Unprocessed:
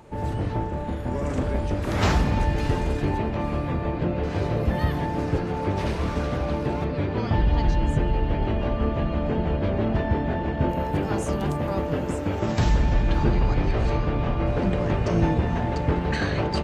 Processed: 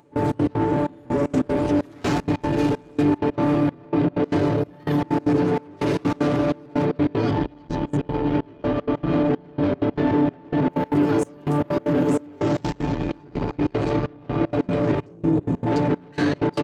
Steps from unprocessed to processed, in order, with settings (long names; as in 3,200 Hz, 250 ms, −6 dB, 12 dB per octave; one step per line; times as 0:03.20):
comb filter 7 ms, depth 94%
brickwall limiter −18.5 dBFS, peak gain reduction 10.5 dB
gain on a spectral selection 0:15.06–0:15.67, 570–6,500 Hz −9 dB
soft clipping −26.5 dBFS, distortion −12 dB
high-pass filter 75 Hz
parametric band 310 Hz +10.5 dB 0.91 octaves
upward compression, threshold −34 dBFS
gate pattern "..xx.x.xxxx." 191 BPM −24 dB
level +6.5 dB